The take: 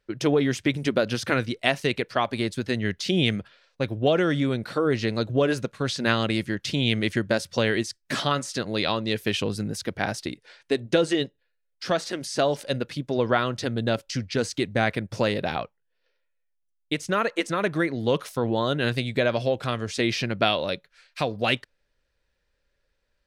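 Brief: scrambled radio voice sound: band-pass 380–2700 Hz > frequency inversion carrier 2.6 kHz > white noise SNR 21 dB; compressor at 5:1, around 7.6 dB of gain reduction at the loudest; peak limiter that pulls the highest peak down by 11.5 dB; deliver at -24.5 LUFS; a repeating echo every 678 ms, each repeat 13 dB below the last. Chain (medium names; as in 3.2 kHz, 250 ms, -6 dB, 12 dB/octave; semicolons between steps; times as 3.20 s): compression 5:1, threshold -25 dBFS; peak limiter -21.5 dBFS; band-pass 380–2700 Hz; feedback delay 678 ms, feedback 22%, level -13 dB; frequency inversion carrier 2.6 kHz; white noise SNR 21 dB; trim +10.5 dB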